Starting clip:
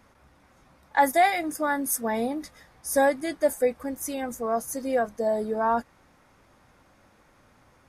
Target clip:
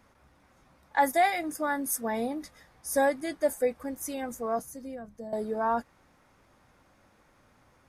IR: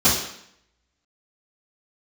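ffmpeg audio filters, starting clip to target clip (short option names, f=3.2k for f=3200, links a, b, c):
-filter_complex "[0:a]asettb=1/sr,asplit=3[a][b][c];[a]atrim=end=4.594[d];[b]atrim=start=4.59:end=5.33,asetpts=PTS-STARTPTS,afade=t=in:d=0.004:c=qsin,afade=t=out:st=0.736:d=0.004:c=qsin,acrossover=split=220[e][f];[f]acompressor=threshold=-41dB:ratio=4[g];[e][g]amix=inputs=2:normalize=0[h];[c]atrim=start=5.326[i];[d][h]acrossfade=d=0.004:c1=hsin:c2=qsin[j];[j][i]acrossfade=d=0.004:c1=qsin:c2=hsin,volume=-3.5dB"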